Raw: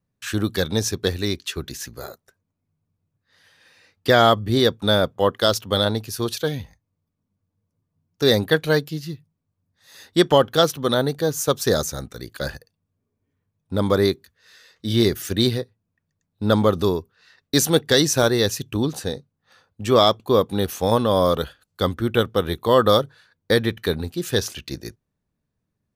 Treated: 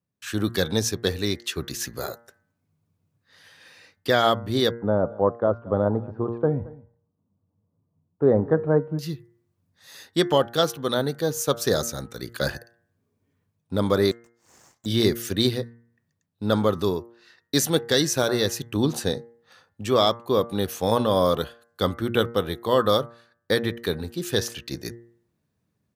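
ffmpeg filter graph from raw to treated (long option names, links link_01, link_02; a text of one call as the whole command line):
ffmpeg -i in.wav -filter_complex "[0:a]asettb=1/sr,asplit=3[link_01][link_02][link_03];[link_01]atrim=end=4.714[link_04];[link_02]atrim=start=4.71:end=8.99,asetpts=PTS-STARTPTS,afade=type=in:duration=0.004:curve=qsin,afade=type=out:start_time=4.276:duration=0.004:curve=qsin,lowpass=frequency=1100:width=0.5412,lowpass=frequency=1100:width=1.3066,aecho=1:1:224:0.0841,atrim=end_sample=188748[link_05];[link_03]atrim=start=8.986[link_06];[link_04][link_05]acrossfade=duration=0.004:curve1=hsin:curve2=qsin[link_07];[link_07][link_06]acrossfade=duration=0.004:curve1=qsin:curve2=hsin,asettb=1/sr,asplit=3[link_08][link_09][link_10];[link_08]atrim=end=14.114[link_11];[link_09]atrim=start=14.11:end=14.86,asetpts=PTS-STARTPTS,afade=type=in:duration=0.004:curve=qsin,afade=type=out:start_time=0.746:duration=0.004:curve=qsin,bandpass=frequency=3100:width_type=q:width=5.2,acontrast=78,aeval=exprs='abs(val(0))':channel_layout=same[link_12];[link_10]atrim=start=14.856[link_13];[link_11][link_12]acrossfade=duration=0.004:curve1=hsin:curve2=qsin[link_14];[link_14][link_13]acrossfade=duration=0.004:curve1=qsin:curve2=hsin,highpass=83,bandreject=frequency=117.1:width_type=h:width=4,bandreject=frequency=234.2:width_type=h:width=4,bandreject=frequency=351.3:width_type=h:width=4,bandreject=frequency=468.4:width_type=h:width=4,bandreject=frequency=585.5:width_type=h:width=4,bandreject=frequency=702.6:width_type=h:width=4,bandreject=frequency=819.7:width_type=h:width=4,bandreject=frequency=936.8:width_type=h:width=4,bandreject=frequency=1053.9:width_type=h:width=4,bandreject=frequency=1171:width_type=h:width=4,bandreject=frequency=1288.1:width_type=h:width=4,bandreject=frequency=1405.2:width_type=h:width=4,bandreject=frequency=1522.3:width_type=h:width=4,bandreject=frequency=1639.4:width_type=h:width=4,bandreject=frequency=1756.5:width_type=h:width=4,bandreject=frequency=1873.6:width_type=h:width=4,bandreject=frequency=1990.7:width_type=h:width=4,bandreject=frequency=2107.8:width_type=h:width=4,dynaudnorm=framelen=240:gausssize=3:maxgain=10.5dB,volume=-6dB" out.wav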